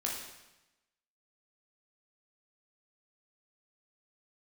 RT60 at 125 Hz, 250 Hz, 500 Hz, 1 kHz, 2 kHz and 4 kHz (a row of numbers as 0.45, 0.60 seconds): 1.1, 1.0, 0.95, 1.0, 1.0, 0.95 seconds